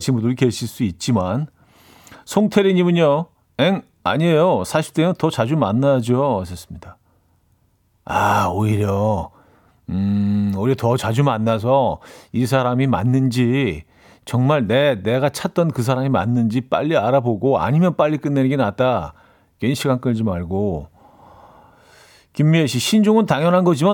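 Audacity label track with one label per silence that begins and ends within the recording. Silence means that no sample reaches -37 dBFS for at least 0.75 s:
6.920000	8.070000	silence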